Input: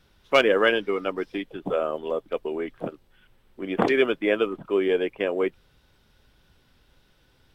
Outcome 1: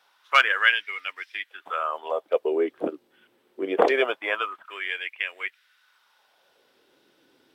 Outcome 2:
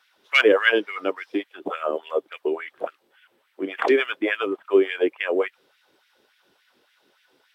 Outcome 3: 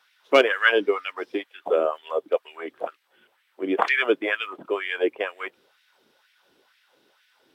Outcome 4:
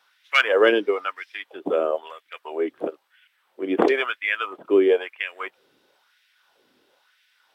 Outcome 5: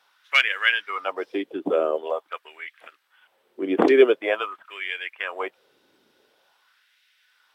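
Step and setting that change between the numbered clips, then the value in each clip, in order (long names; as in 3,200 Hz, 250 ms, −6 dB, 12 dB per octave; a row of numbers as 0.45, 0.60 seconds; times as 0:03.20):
auto-filter high-pass, speed: 0.24, 3.5, 2.1, 1, 0.46 Hertz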